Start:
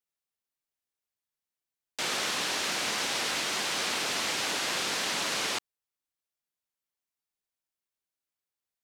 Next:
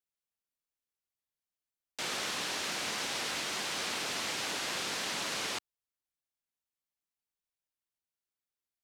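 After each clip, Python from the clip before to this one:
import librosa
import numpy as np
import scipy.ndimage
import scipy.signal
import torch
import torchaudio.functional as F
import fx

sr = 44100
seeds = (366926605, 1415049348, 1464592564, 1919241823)

y = fx.low_shelf(x, sr, hz=130.0, db=5.0)
y = y * librosa.db_to_amplitude(-5.0)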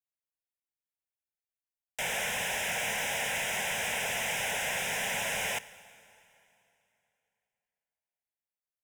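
y = fx.leveller(x, sr, passes=3)
y = fx.fixed_phaser(y, sr, hz=1200.0, stages=6)
y = fx.rev_plate(y, sr, seeds[0], rt60_s=3.0, hf_ratio=0.9, predelay_ms=0, drr_db=16.5)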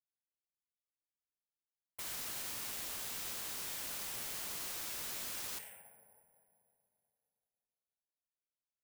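y = fx.env_lowpass(x, sr, base_hz=720.0, full_db=-29.5)
y = 10.0 ** (-37.5 / 20.0) * (np.abs((y / 10.0 ** (-37.5 / 20.0) + 3.0) % 4.0 - 2.0) - 1.0)
y = (np.kron(y[::4], np.eye(4)[0]) * 4)[:len(y)]
y = y * librosa.db_to_amplitude(-6.0)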